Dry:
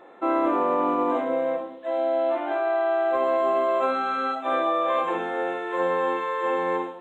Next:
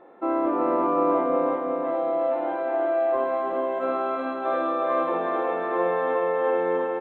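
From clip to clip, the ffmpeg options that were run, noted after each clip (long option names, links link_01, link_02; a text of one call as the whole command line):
ffmpeg -i in.wav -af "lowpass=frequency=1000:poles=1,aecho=1:1:366|732|1098|1464|1830|2196|2562|2928|3294:0.708|0.418|0.246|0.145|0.0858|0.0506|0.0299|0.0176|0.0104" out.wav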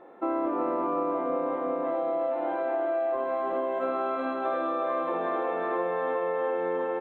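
ffmpeg -i in.wav -af "acompressor=threshold=-25dB:ratio=6" out.wav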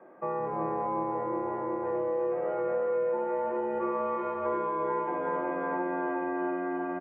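ffmpeg -i in.wav -filter_complex "[0:a]acrossover=split=360[link_01][link_02];[link_01]adelay=170[link_03];[link_03][link_02]amix=inputs=2:normalize=0,highpass=frequency=440:width_type=q:width=0.5412,highpass=frequency=440:width_type=q:width=1.307,lowpass=frequency=2600:width_type=q:width=0.5176,lowpass=frequency=2600:width_type=q:width=0.7071,lowpass=frequency=2600:width_type=q:width=1.932,afreqshift=-170" out.wav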